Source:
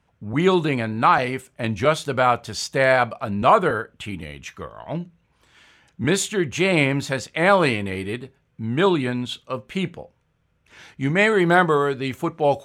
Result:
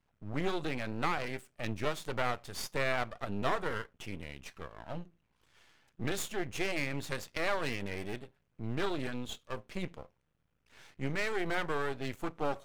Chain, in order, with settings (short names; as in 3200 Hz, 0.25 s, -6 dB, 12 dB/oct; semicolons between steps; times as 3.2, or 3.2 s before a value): compressor 3:1, threshold -18 dBFS, peak gain reduction 7 dB; half-wave rectifier; gain -7.5 dB